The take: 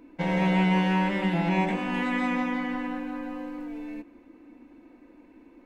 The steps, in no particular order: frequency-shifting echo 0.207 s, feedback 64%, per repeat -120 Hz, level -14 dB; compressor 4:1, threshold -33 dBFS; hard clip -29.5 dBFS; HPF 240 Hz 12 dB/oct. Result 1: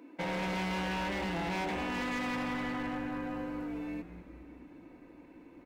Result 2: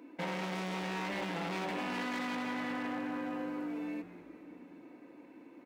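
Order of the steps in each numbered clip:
HPF > frequency-shifting echo > hard clip > compressor; frequency-shifting echo > hard clip > HPF > compressor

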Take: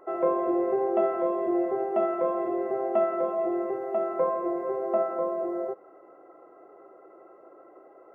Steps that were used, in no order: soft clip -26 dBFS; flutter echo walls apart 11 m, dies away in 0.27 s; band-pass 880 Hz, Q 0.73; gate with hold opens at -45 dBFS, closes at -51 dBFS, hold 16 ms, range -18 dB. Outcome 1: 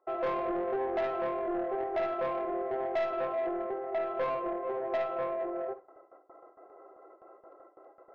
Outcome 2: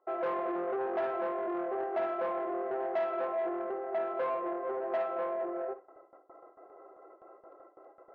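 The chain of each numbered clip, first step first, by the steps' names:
band-pass > gate with hold > soft clip > flutter echo; soft clip > band-pass > gate with hold > flutter echo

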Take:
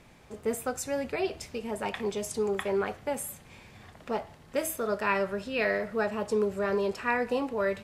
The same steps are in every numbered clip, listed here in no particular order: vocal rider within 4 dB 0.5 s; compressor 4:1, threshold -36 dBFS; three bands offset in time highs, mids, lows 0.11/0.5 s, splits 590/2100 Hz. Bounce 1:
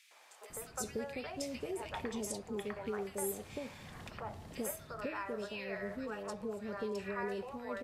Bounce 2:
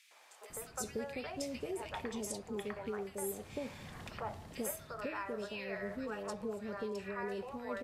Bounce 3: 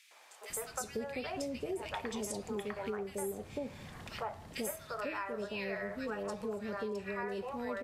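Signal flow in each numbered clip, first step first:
vocal rider > compressor > three bands offset in time; compressor > three bands offset in time > vocal rider; three bands offset in time > vocal rider > compressor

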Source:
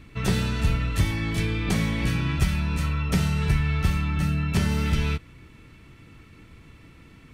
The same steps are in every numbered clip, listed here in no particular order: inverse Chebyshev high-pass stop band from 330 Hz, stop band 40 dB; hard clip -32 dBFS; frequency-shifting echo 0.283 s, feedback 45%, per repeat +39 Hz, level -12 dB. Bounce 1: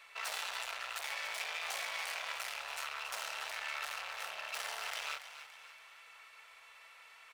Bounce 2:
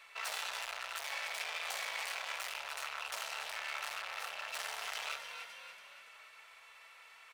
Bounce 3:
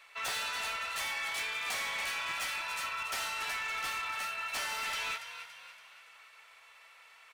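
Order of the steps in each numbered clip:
hard clip > inverse Chebyshev high-pass > frequency-shifting echo; frequency-shifting echo > hard clip > inverse Chebyshev high-pass; inverse Chebyshev high-pass > frequency-shifting echo > hard clip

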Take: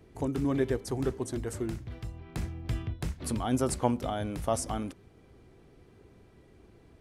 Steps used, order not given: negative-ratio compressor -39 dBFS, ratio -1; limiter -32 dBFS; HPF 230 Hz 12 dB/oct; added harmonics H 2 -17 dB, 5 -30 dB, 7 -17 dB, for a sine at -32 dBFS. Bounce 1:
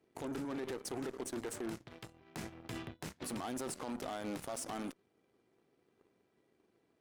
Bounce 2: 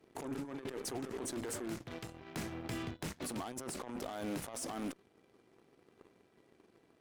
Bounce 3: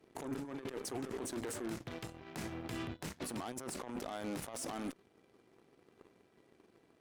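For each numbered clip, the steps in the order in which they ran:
HPF > limiter > negative-ratio compressor > added harmonics; HPF > negative-ratio compressor > added harmonics > limiter; HPF > negative-ratio compressor > limiter > added harmonics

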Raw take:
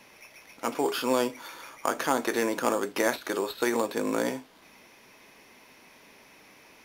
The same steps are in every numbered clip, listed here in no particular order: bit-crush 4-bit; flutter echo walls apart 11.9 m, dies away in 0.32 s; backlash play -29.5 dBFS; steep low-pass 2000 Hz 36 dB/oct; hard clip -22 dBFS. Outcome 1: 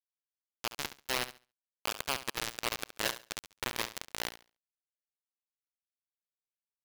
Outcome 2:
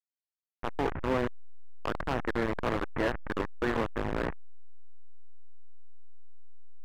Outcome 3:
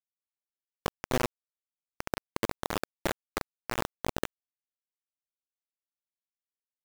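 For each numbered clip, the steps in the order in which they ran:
hard clip > backlash > steep low-pass > bit-crush > flutter echo; flutter echo > bit-crush > backlash > steep low-pass > hard clip; steep low-pass > hard clip > flutter echo > backlash > bit-crush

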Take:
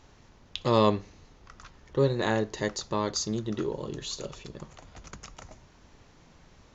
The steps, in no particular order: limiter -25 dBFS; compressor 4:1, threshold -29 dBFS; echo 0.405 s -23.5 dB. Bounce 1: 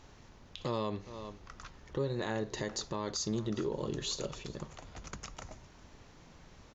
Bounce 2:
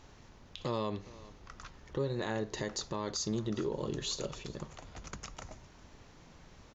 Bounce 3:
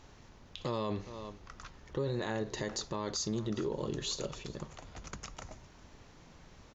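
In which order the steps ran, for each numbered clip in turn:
echo > compressor > limiter; compressor > echo > limiter; echo > limiter > compressor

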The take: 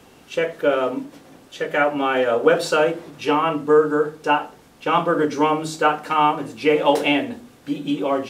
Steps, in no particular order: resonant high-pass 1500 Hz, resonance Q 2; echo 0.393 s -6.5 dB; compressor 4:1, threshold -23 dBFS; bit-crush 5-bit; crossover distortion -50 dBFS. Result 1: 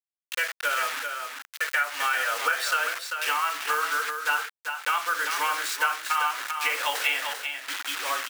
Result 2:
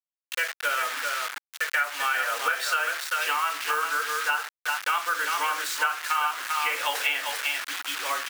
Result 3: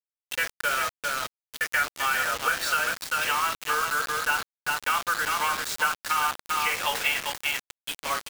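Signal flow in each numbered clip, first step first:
crossover distortion > bit-crush > resonant high-pass > compressor > echo; echo > crossover distortion > bit-crush > resonant high-pass > compressor; echo > crossover distortion > resonant high-pass > compressor > bit-crush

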